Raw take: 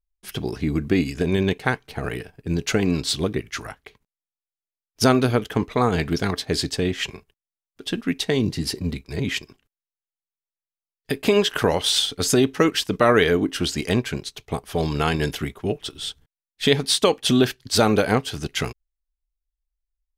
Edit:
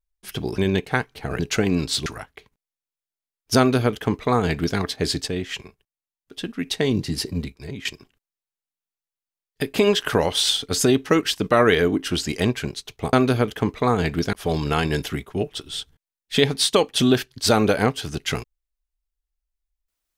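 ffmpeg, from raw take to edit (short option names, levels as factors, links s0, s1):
-filter_complex "[0:a]asplit=9[s0][s1][s2][s3][s4][s5][s6][s7][s8];[s0]atrim=end=0.582[s9];[s1]atrim=start=1.308:end=2.122[s10];[s2]atrim=start=2.548:end=3.222[s11];[s3]atrim=start=3.548:end=6.772[s12];[s4]atrim=start=6.768:end=8.142,asetpts=PTS-STARTPTS,volume=0.631[s13];[s5]atrim=start=8.138:end=9.34,asetpts=PTS-STARTPTS,afade=t=out:st=0.692:d=0.51:silence=0.199526[s14];[s6]atrim=start=9.34:end=14.622,asetpts=PTS-STARTPTS,afade=t=in:d=0.004:c=hsin:silence=0.199526[s15];[s7]atrim=start=5.068:end=6.272[s16];[s8]atrim=start=14.618[s17];[s9][s10]acrossfade=d=0.004:c1=hsin:c2=hsin[s18];[s18][s11]acrossfade=d=0.004:c1=hsin:c2=hsin[s19];[s19][s12]acrossfade=d=0.004:c1=hsin:c2=hsin[s20];[s20][s13]acrossfade=d=0.004:c1=hsin:c2=hsin[s21];[s14][s15]concat=n=2:v=0:a=1[s22];[s21][s22]acrossfade=d=0.004:c1=hsin:c2=hsin[s23];[s23][s16]acrossfade=d=0.004:c1=hsin:c2=hsin[s24];[s24][s17]acrossfade=d=0.004:c1=hsin:c2=hsin"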